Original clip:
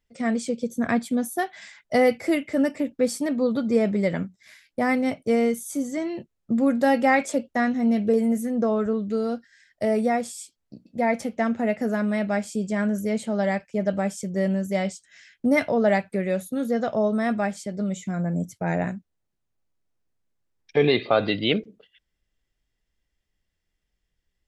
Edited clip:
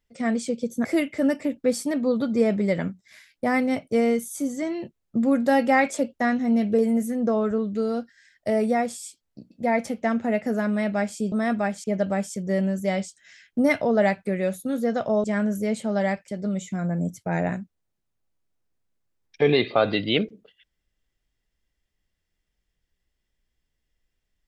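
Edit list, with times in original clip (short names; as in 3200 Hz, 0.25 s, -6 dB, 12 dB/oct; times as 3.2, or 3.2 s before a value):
0.85–2.2 cut
12.67–13.71 swap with 17.11–17.63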